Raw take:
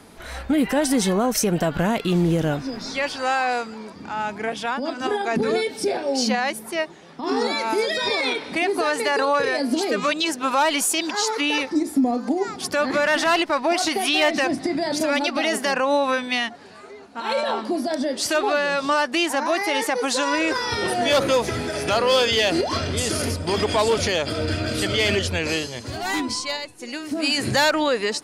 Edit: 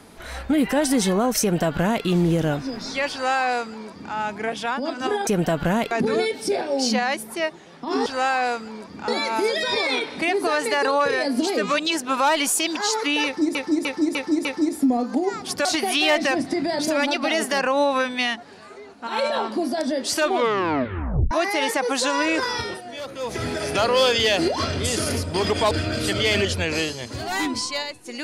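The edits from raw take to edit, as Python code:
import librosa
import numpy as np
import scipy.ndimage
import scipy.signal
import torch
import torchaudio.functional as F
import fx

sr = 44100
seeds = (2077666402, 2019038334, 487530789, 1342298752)

y = fx.edit(x, sr, fx.duplicate(start_s=1.41, length_s=0.64, to_s=5.27),
    fx.duplicate(start_s=3.12, length_s=1.02, to_s=7.42),
    fx.repeat(start_s=11.59, length_s=0.3, count=5),
    fx.cut(start_s=12.79, length_s=0.99),
    fx.tape_stop(start_s=18.36, length_s=1.08),
    fx.fade_down_up(start_s=20.65, length_s=0.94, db=-15.0, fade_s=0.28),
    fx.cut(start_s=23.84, length_s=0.61), tone=tone)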